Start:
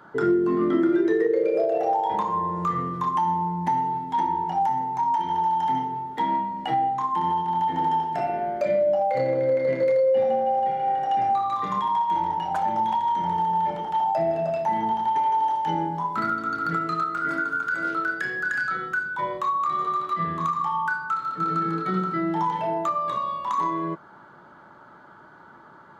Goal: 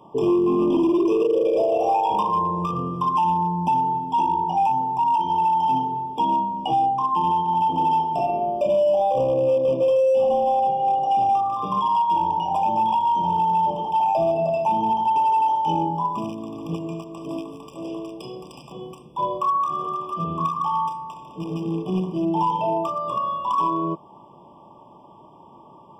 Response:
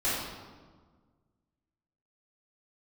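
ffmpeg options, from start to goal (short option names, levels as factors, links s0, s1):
-filter_complex "[0:a]asettb=1/sr,asplit=3[s0][s1][s2];[s0]atrim=end=0.724[s3];[s1]atrim=start=0.72:end=2.42,asetpts=PTS-STARTPTS,afade=t=in:d=0.004:c=qsin,afade=t=out:st=1.696:d=0.004:c=qsin,highshelf=f=3300:g=6.5[s4];[s2]atrim=start=2.416[s5];[s3][s4]acrossfade=d=0.004:c1=hsin:c2=qsin[s6];[s6][s5]acrossfade=d=0.004:c1=qsin:c2=hsin,asoftclip=type=hard:threshold=0.112,afftfilt=real='re*eq(mod(floor(b*sr/1024/1200),2),0)':imag='im*eq(mod(floor(b*sr/1024/1200),2),0)':win_size=1024:overlap=0.75,volume=1.5"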